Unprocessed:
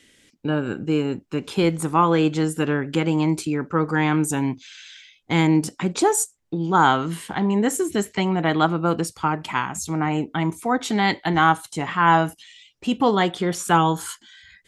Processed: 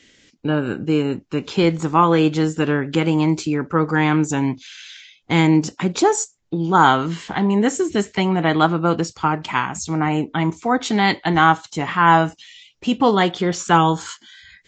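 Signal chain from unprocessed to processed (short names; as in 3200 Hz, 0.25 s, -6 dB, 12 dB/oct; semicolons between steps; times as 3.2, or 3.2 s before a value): gain +3 dB; Vorbis 48 kbps 16000 Hz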